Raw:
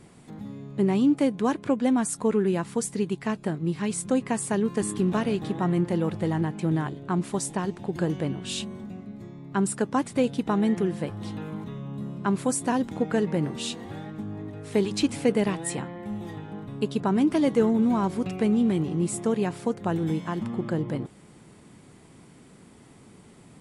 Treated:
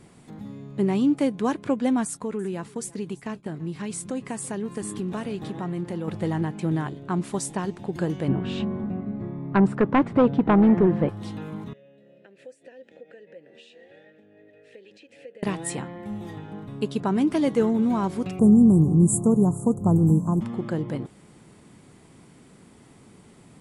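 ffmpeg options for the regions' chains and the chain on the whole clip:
-filter_complex "[0:a]asettb=1/sr,asplit=3[s0][s1][s2];[s0]atrim=end=2.054[s3];[s1]atrim=start=2.05:end=6.08,asetpts=PTS-STARTPTS,afade=t=in:d=0.004:c=qsin,afade=t=out:st=4.026:d=0.004:c=qsin,agate=range=0.0224:threshold=0.0158:ratio=3:release=100:detection=peak,acompressor=threshold=0.0316:ratio=2:attack=3.2:release=140:knee=1:detection=peak,aecho=1:1:335:0.0841,atrim=end_sample=177723[s4];[s2]atrim=start=6.076[s5];[s3][s4]acrossfade=d=0.004:c1=hsin:c2=qsin[s6];[s6][s5]acrossfade=d=0.004:c1=qsin:c2=hsin,asettb=1/sr,asplit=3[s7][s8][s9];[s7]atrim=end=8.284[s10];[s8]atrim=start=8.28:end=11.09,asetpts=PTS-STARTPTS,afade=t=in:d=0.004:c=qsin,afade=t=out:st=2.806:d=0.004:c=qsin,lowpass=1500,aeval=exprs='0.251*sin(PI/2*1.78*val(0)/0.251)':c=same[s11];[s9]atrim=start=11.086[s12];[s10][s11]acrossfade=d=0.004:c1=hsin:c2=qsin[s13];[s13][s12]acrossfade=d=0.004:c1=qsin:c2=hsin,asettb=1/sr,asplit=3[s14][s15][s16];[s14]atrim=end=11.734[s17];[s15]atrim=start=11.73:end=15.43,asetpts=PTS-STARTPTS,afade=t=in:d=0.004:c=qsin,afade=t=out:st=3.696:d=0.004:c=qsin,equalizer=f=5900:w=0.33:g=6.5,acompressor=threshold=0.0316:ratio=10:attack=3.2:release=140:knee=1:detection=peak,asplit=3[s18][s19][s20];[s18]bandpass=f=530:t=q:w=8,volume=1[s21];[s19]bandpass=f=1840:t=q:w=8,volume=0.501[s22];[s20]bandpass=f=2480:t=q:w=8,volume=0.355[s23];[s21][s22][s23]amix=inputs=3:normalize=0[s24];[s16]atrim=start=15.426[s25];[s17][s24]acrossfade=d=0.004:c1=hsin:c2=qsin[s26];[s26][s25]acrossfade=d=0.004:c1=qsin:c2=hsin,asettb=1/sr,asplit=3[s27][s28][s29];[s27]atrim=end=18.394[s30];[s28]atrim=start=18.39:end=20.41,asetpts=PTS-STARTPTS,afade=t=in:d=0.004:c=qsin,afade=t=out:st=2.016:d=0.004:c=qsin,asuperstop=centerf=3000:order=12:qfactor=0.51,bass=f=250:g=13,treble=f=4000:g=9[s31];[s29]atrim=start=20.406[s32];[s30][s31]acrossfade=d=0.004:c1=hsin:c2=qsin[s33];[s33][s32]acrossfade=d=0.004:c1=qsin:c2=hsin"

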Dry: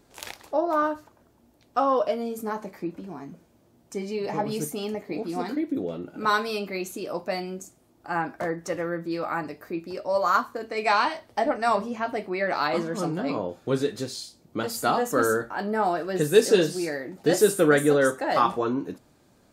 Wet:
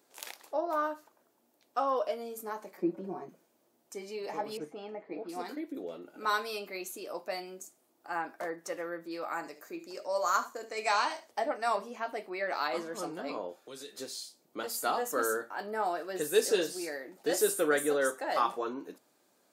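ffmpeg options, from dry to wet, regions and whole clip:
-filter_complex "[0:a]asettb=1/sr,asplit=3[s0][s1][s2];[s0]atrim=end=2.774[s3];[s1]atrim=start=2.77:end=3.29,asetpts=PTS-STARTPTS,afade=t=in:d=0.004:c=qsin,afade=t=out:st=0.516:d=0.004:c=qsin,tiltshelf=f=1300:g=9.5,aecho=1:1:5.4:0.94,atrim=end_sample=22932[s4];[s2]atrim=start=3.286[s5];[s3][s4]acrossfade=d=0.004:c1=hsin:c2=qsin[s6];[s6][s5]acrossfade=d=0.004:c1=qsin:c2=hsin,asettb=1/sr,asplit=3[s7][s8][s9];[s7]atrim=end=4.574[s10];[s8]atrim=start=4.57:end=5.29,asetpts=PTS-STARTPTS,afade=t=in:d=0.004:c=qsin,afade=t=out:st=0.716:d=0.004:c=qsin,lowpass=1900,aecho=1:1:6.2:0.42,atrim=end_sample=31752[s11];[s9]atrim=start=5.286[s12];[s10][s11]acrossfade=d=0.004:c1=hsin:c2=qsin[s13];[s13][s12]acrossfade=d=0.004:c1=qsin:c2=hsin,asettb=1/sr,asplit=3[s14][s15][s16];[s14]atrim=end=9.314[s17];[s15]atrim=start=9.31:end=11.31,asetpts=PTS-STARTPTS,afade=t=in:d=0.004:c=qsin,afade=t=out:st=1.996:d=0.004:c=qsin,equalizer=f=6800:t=o:w=0.48:g=12.5,aecho=1:1:73:0.188,atrim=end_sample=88200[s18];[s16]atrim=start=11.306[s19];[s17][s18]acrossfade=d=0.004:c1=hsin:c2=qsin[s20];[s20][s19]acrossfade=d=0.004:c1=qsin:c2=hsin,asettb=1/sr,asplit=3[s21][s22][s23];[s21]atrim=end=13.554[s24];[s22]atrim=start=13.55:end=13.97,asetpts=PTS-STARTPTS,afade=t=in:d=0.004:c=qsin,afade=t=out:st=0.416:d=0.004:c=qsin,bass=f=250:g=-8,treble=f=4000:g=-1,acrossover=split=190|3000[s25][s26][s27];[s26]acompressor=threshold=0.0112:ratio=4:attack=3.2:release=140:knee=2.83:detection=peak[s28];[s25][s28][s27]amix=inputs=3:normalize=0[s29];[s23]atrim=start=13.966[s30];[s24][s29]acrossfade=d=0.004:c1=hsin:c2=qsin[s31];[s31][s30]acrossfade=d=0.004:c1=qsin:c2=hsin,highpass=360,highshelf=f=8800:g=8.5,volume=0.447"

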